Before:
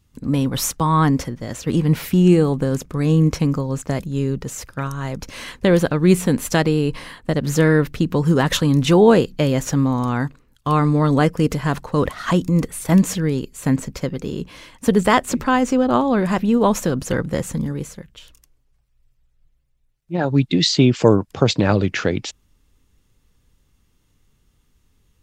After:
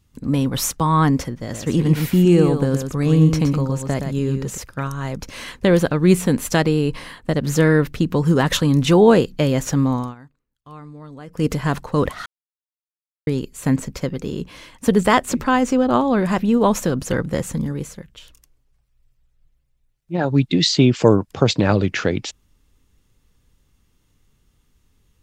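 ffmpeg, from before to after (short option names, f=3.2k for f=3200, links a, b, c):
-filter_complex "[0:a]asettb=1/sr,asplit=3[a][b][c];[a]atrim=end=1.414[d];[b]atrim=start=1.41:end=4.58,asetpts=PTS-STARTPTS,afade=t=in:d=0.004:c=qsin,afade=t=out:st=3.166:d=0.004:c=qsin,aecho=1:1:119:0.473,atrim=end_sample=139797[e];[c]atrim=start=4.576[f];[d][e]acrossfade=d=0.004:c1=hsin:c2=qsin[g];[g][f]acrossfade=d=0.004:c1=qsin:c2=hsin,asplit=5[h][i][j][k][l];[h]atrim=end=10.15,asetpts=PTS-STARTPTS,afade=t=out:st=9.94:d=0.21:silence=0.0794328[m];[i]atrim=start=10.15:end=11.27,asetpts=PTS-STARTPTS,volume=-22dB[n];[j]atrim=start=11.27:end=12.26,asetpts=PTS-STARTPTS,afade=t=in:d=0.21:silence=0.0794328,afade=t=out:st=0.986:d=0.004:c=hsin[o];[k]atrim=start=12.26:end=13.27,asetpts=PTS-STARTPTS,volume=0[p];[l]atrim=start=13.27,asetpts=PTS-STARTPTS,afade=t=in:d=0.004:c=hsin[q];[m][n][o][p][q]concat=n=5:v=0:a=1"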